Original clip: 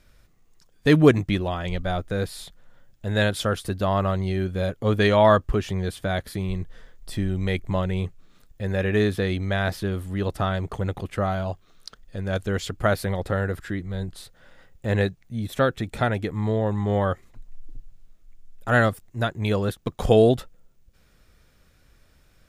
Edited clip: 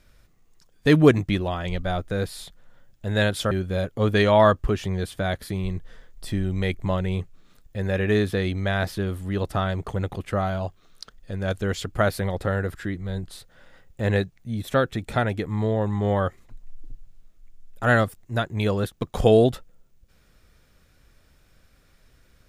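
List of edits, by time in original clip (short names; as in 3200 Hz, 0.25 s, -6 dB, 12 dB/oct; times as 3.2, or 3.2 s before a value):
3.51–4.36 cut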